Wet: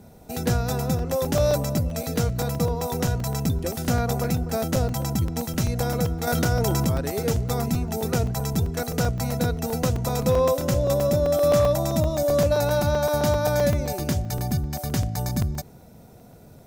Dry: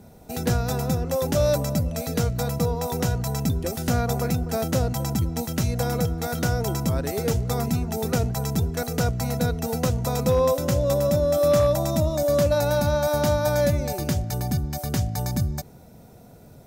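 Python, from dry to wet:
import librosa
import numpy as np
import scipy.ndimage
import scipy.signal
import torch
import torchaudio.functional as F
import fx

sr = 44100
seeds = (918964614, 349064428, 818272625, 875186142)

y = fx.buffer_crackle(x, sr, first_s=0.99, period_s=0.13, block=128, kind='zero')
y = fx.env_flatten(y, sr, amount_pct=70, at=(6.27, 6.92))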